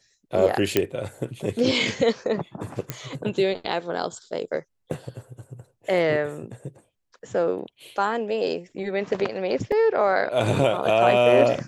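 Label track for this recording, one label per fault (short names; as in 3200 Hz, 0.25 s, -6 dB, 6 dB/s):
0.770000	0.770000	pop -5 dBFS
2.900000	2.900000	pop -11 dBFS
4.930000	4.930000	gap 3.6 ms
9.720000	9.720000	gap 3.2 ms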